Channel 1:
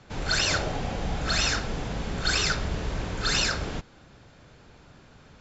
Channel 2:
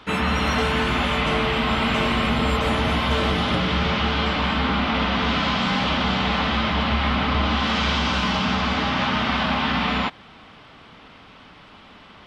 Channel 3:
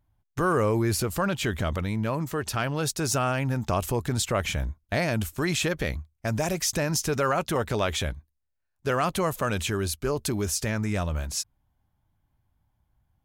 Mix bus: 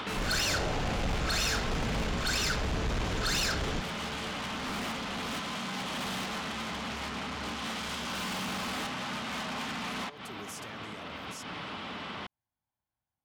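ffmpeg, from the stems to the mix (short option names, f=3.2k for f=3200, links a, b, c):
-filter_complex "[0:a]dynaudnorm=f=100:g=3:m=12.5dB,volume=-10.5dB[a];[1:a]aeval=exprs='0.282*sin(PI/2*2.51*val(0)/0.282)':c=same,highpass=100,volume=1dB[b];[2:a]highpass=f=470:p=1,alimiter=limit=-22.5dB:level=0:latency=1,volume=-10.5dB,asplit=2[c][d];[d]apad=whole_len=540972[e];[b][e]sidechaincompress=threshold=-48dB:ratio=5:attack=5.9:release=194[f];[f][c]amix=inputs=2:normalize=0,asoftclip=type=tanh:threshold=-21dB,acompressor=threshold=-37dB:ratio=4,volume=0dB[g];[a][g]amix=inputs=2:normalize=0,asoftclip=type=tanh:threshold=-25.5dB"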